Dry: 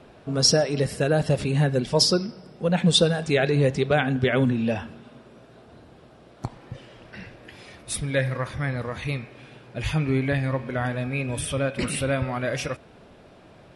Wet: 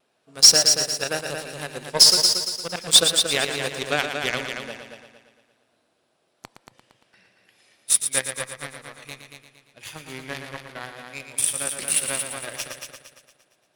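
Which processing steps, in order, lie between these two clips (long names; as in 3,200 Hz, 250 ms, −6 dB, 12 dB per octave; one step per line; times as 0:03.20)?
high-pass filter 84 Hz
RIAA equalisation recording
harmonic generator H 7 −18 dB, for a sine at −6 dBFS
pitch vibrato 0.96 Hz 21 cents
echo machine with several playback heads 115 ms, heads first and second, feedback 44%, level −8 dB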